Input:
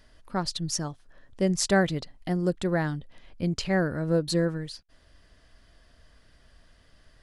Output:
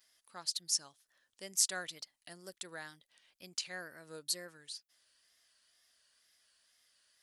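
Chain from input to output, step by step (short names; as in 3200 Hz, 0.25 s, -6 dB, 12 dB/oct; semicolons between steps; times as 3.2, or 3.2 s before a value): vibrato 2.1 Hz 94 cents; differentiator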